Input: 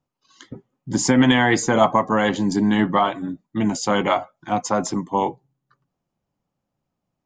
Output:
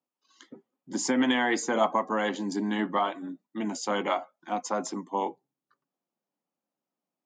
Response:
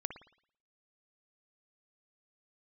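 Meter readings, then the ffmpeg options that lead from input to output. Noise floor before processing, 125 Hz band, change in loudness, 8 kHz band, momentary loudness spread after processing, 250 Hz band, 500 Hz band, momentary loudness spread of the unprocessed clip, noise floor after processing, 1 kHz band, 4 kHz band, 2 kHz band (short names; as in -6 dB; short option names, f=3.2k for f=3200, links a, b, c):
-81 dBFS, -17.5 dB, -8.5 dB, -8.0 dB, 10 LU, -10.0 dB, -8.0 dB, 11 LU, under -85 dBFS, -8.0 dB, -8.0 dB, -8.0 dB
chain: -af "highpass=f=220:w=0.5412,highpass=f=220:w=1.3066,volume=-8dB"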